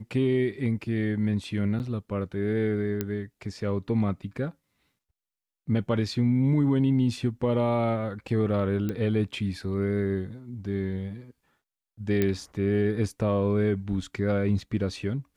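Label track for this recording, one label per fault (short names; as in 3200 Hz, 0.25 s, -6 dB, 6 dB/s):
1.790000	1.800000	gap 9.2 ms
3.010000	3.010000	pop -14 dBFS
8.890000	8.890000	pop -18 dBFS
12.220000	12.220000	pop -12 dBFS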